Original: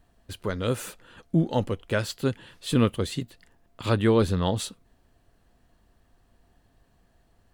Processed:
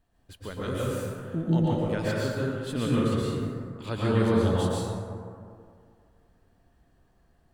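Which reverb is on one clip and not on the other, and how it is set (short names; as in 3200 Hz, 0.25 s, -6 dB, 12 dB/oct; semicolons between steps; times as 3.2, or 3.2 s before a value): plate-style reverb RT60 2.2 s, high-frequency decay 0.35×, pre-delay 0.105 s, DRR -7 dB; gain -9.5 dB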